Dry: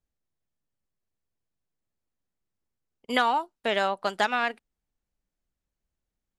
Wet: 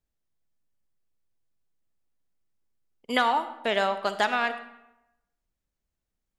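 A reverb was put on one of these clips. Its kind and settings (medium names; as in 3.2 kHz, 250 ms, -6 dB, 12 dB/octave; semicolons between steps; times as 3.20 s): algorithmic reverb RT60 0.92 s, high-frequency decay 0.7×, pre-delay 15 ms, DRR 11 dB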